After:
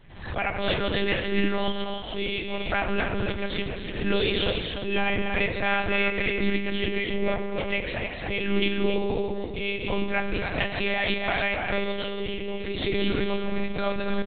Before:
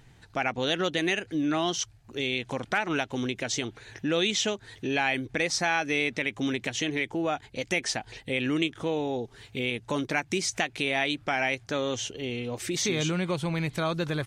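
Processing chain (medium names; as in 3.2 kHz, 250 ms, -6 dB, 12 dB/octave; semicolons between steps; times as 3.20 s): band-stop 1.2 kHz; loudspeakers at several distances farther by 89 m -10 dB, 100 m -7 dB; FDN reverb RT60 1.8 s, low-frequency decay 1×, high-frequency decay 0.8×, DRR 4 dB; monotone LPC vocoder at 8 kHz 200 Hz; swell ahead of each attack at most 73 dB/s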